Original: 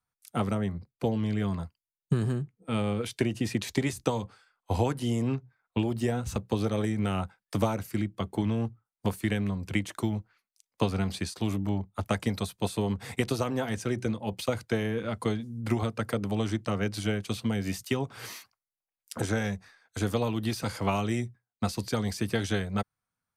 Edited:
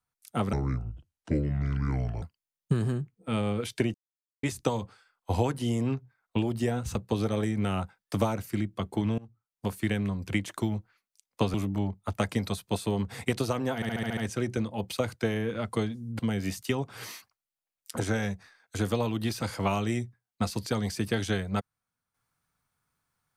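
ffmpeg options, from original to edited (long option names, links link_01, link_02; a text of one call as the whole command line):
ffmpeg -i in.wav -filter_complex "[0:a]asplit=14[link_01][link_02][link_03][link_04][link_05][link_06][link_07][link_08][link_09][link_10][link_11][link_12][link_13][link_14];[link_01]atrim=end=0.534[link_15];[link_02]atrim=start=0.53:end=1.63,asetpts=PTS-STARTPTS,asetrate=28665,aresample=44100[link_16];[link_03]atrim=start=1.626:end=3.35,asetpts=PTS-STARTPTS,afade=type=out:start_time=1.72:duration=0.004:curve=hsin[link_17];[link_04]atrim=start=3.35:end=3.84,asetpts=PTS-STARTPTS,volume=0[link_18];[link_05]atrim=start=3.84:end=8.59,asetpts=PTS-STARTPTS,afade=type=in:duration=0.004:curve=hsin,afade=type=out:start_time=4.746:duration=0.004:curve=hsin:silence=0.0630957[link_19];[link_06]atrim=start=8.59:end=10.952,asetpts=PTS-STARTPTS,afade=type=in:duration=0.68:silence=0.0630957[link_20];[link_07]atrim=start=11.448:end=13.732[link_21];[link_08]atrim=start=13.658:end=13.732[link_22];[link_09]atrim=start=13.658:end=13.732[link_23];[link_10]atrim=start=13.658:end=13.732[link_24];[link_11]atrim=start=13.658:end=13.732[link_25];[link_12]atrim=start=13.658:end=13.732[link_26];[link_13]atrim=start=13.658:end=15.682[link_27];[link_14]atrim=start=17.408[link_28];[link_15][link_16]acrossfade=duration=0.004:curve1=hsin:curve2=hsin[link_29];[link_17][link_18][link_19][link_20]concat=n=4:v=0:a=1[link_30];[link_29][link_30]acrossfade=duration=0.004:curve1=hsin:curve2=hsin[link_31];[link_31][link_21]acrossfade=duration=0.004:curve1=hsin:curve2=hsin[link_32];[link_32][link_22]acrossfade=duration=0.004:curve1=hsin:curve2=hsin[link_33];[link_33][link_23]acrossfade=duration=0.004:curve1=hsin:curve2=hsin[link_34];[link_34][link_24]acrossfade=duration=0.004:curve1=hsin:curve2=hsin[link_35];[link_35][link_25]acrossfade=duration=0.004:curve1=hsin:curve2=hsin[link_36];[link_36][link_26]acrossfade=duration=0.004:curve1=hsin:curve2=hsin[link_37];[link_37][link_27]acrossfade=duration=0.004:curve1=hsin:curve2=hsin[link_38];[link_38][link_28]acrossfade=duration=0.004:curve1=hsin:curve2=hsin" out.wav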